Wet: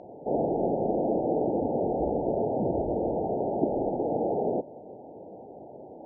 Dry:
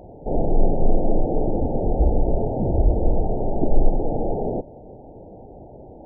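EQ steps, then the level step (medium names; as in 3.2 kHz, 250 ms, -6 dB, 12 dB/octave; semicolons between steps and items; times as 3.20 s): Bessel high-pass 270 Hz, order 2; distance through air 130 m; 0.0 dB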